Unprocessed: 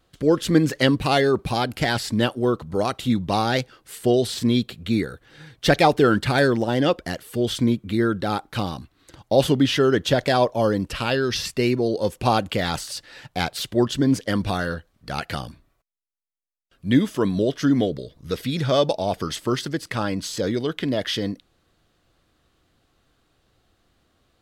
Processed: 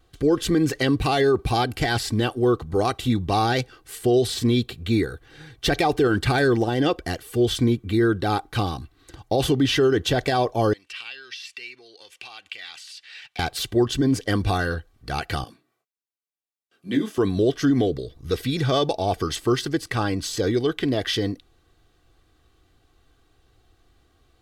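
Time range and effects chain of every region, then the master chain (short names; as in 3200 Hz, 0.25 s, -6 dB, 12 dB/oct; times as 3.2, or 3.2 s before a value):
10.73–13.39 high shelf 2500 Hz +11.5 dB + compressor, threshold -29 dBFS + band-pass 2500 Hz, Q 1.8
15.44–17.18 HPF 170 Hz 24 dB/oct + detuned doubles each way 29 cents
whole clip: low shelf 140 Hz +6 dB; comb 2.6 ms, depth 49%; limiter -11.5 dBFS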